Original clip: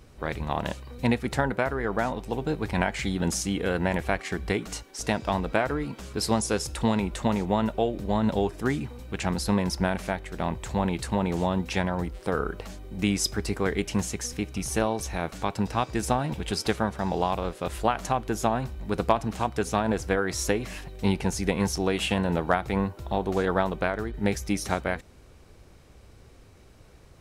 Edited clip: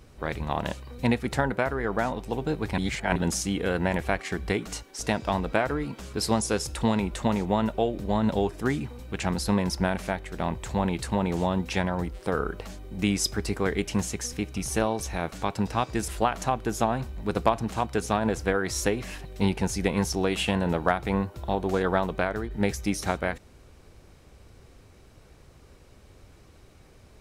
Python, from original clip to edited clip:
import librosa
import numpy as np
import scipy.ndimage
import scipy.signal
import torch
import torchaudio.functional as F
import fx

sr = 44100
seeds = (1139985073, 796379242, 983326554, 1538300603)

y = fx.edit(x, sr, fx.reverse_span(start_s=2.78, length_s=0.38),
    fx.cut(start_s=16.08, length_s=1.63), tone=tone)